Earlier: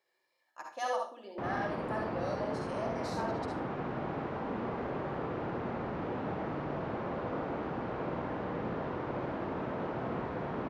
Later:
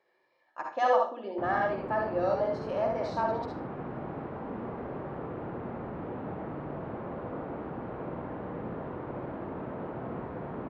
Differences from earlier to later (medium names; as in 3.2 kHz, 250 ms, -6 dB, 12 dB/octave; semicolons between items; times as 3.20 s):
speech +11.5 dB; master: add tape spacing loss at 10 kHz 30 dB